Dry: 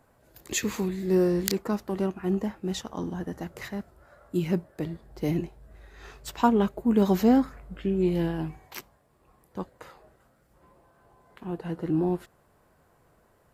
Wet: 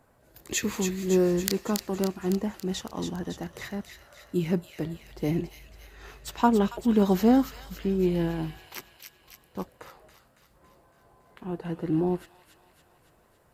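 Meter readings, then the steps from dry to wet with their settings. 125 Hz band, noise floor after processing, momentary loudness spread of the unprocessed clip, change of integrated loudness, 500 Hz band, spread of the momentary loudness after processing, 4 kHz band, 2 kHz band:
0.0 dB, −63 dBFS, 17 LU, 0.0 dB, 0.0 dB, 17 LU, +1.5 dB, +0.5 dB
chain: on a send: delay with a high-pass on its return 279 ms, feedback 59%, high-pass 2,300 Hz, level −4.5 dB

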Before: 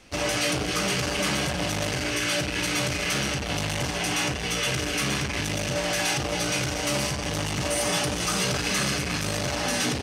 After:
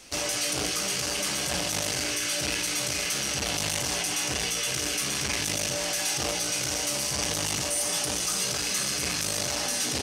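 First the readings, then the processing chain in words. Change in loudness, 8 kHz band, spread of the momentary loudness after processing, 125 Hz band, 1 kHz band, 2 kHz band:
−1.0 dB, +3.5 dB, 1 LU, −8.5 dB, −5.0 dB, −4.5 dB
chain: bass and treble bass −5 dB, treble +11 dB
in parallel at +0.5 dB: compressor whose output falls as the input rises −28 dBFS, ratio −0.5
on the sum: level −9 dB

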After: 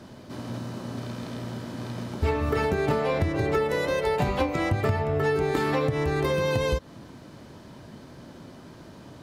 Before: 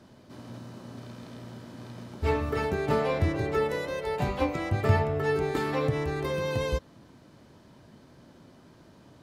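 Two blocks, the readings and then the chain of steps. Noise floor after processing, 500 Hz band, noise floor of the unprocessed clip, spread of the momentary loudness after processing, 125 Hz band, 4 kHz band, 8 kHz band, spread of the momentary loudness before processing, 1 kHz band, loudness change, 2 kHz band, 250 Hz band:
−47 dBFS, +3.0 dB, −55 dBFS, 21 LU, +2.0 dB, +4.0 dB, +4.5 dB, 18 LU, +3.0 dB, +1.5 dB, +3.5 dB, +3.5 dB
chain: downward compressor 16 to 1, threshold −29 dBFS, peak gain reduction 13.5 dB
level +8.5 dB

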